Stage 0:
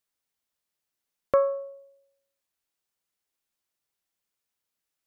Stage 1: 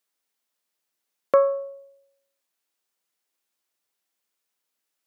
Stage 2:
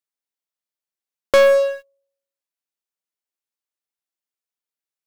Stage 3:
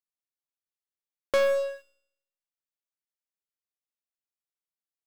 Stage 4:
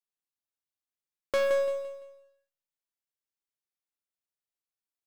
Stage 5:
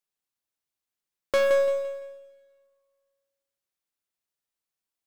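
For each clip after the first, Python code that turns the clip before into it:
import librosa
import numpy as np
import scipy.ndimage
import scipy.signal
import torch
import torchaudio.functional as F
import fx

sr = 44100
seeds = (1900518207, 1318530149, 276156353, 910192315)

y1 = scipy.signal.sosfilt(scipy.signal.butter(2, 220.0, 'highpass', fs=sr, output='sos'), x)
y1 = y1 * 10.0 ** (4.0 / 20.0)
y2 = fx.leveller(y1, sr, passes=5)
y2 = y2 * 10.0 ** (-2.0 / 20.0)
y3 = fx.comb_fb(y2, sr, f0_hz=60.0, decay_s=0.8, harmonics='all', damping=0.0, mix_pct=60)
y3 = y3 * 10.0 ** (-4.0 / 20.0)
y4 = fx.echo_feedback(y3, sr, ms=170, feedback_pct=34, wet_db=-8)
y4 = y4 * 10.0 ** (-3.5 / 20.0)
y5 = fx.rev_plate(y4, sr, seeds[0], rt60_s=1.8, hf_ratio=0.95, predelay_ms=0, drr_db=16.0)
y5 = y5 * 10.0 ** (4.0 / 20.0)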